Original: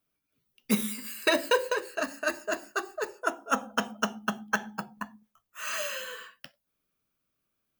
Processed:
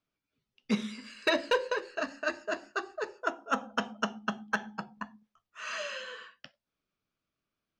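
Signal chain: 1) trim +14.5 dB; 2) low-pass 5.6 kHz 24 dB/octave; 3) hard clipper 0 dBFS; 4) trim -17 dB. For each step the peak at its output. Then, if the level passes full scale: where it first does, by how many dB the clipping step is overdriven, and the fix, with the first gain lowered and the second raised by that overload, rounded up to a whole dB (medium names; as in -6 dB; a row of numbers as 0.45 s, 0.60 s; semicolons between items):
+4.0 dBFS, +3.0 dBFS, 0.0 dBFS, -17.0 dBFS; step 1, 3.0 dB; step 1 +11.5 dB, step 4 -14 dB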